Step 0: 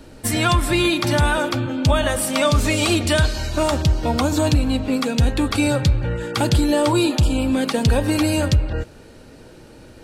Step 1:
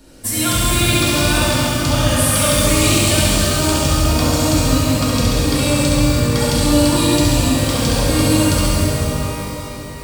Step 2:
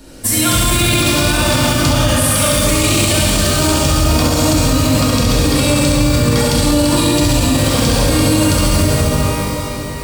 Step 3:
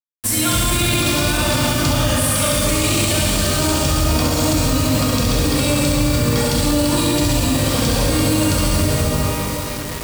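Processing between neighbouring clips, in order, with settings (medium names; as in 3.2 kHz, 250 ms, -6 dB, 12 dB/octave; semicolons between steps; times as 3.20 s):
tone controls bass +1 dB, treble +9 dB; on a send: flutter echo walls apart 11.6 m, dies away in 0.95 s; on the sum: pitch-shifted reverb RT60 3.5 s, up +12 st, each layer -8 dB, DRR -5.5 dB; trim -7 dB
peak limiter -10.5 dBFS, peak gain reduction 8.5 dB; trim +6.5 dB
bit crusher 4-bit; trim -4 dB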